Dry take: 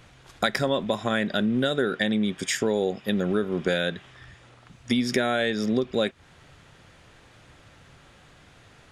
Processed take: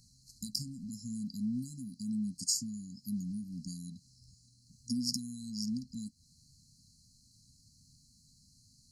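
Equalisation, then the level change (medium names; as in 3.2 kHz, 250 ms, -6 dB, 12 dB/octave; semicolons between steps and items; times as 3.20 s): brick-wall FIR band-stop 270–4000 Hz; bass shelf 480 Hz -11.5 dB; 0.0 dB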